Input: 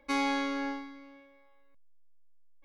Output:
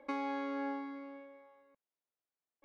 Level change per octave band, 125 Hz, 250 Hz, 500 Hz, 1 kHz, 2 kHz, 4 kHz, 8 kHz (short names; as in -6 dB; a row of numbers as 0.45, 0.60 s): n/a, -6.0 dB, -3.0 dB, -5.5 dB, -10.5 dB, -16.5 dB, under -20 dB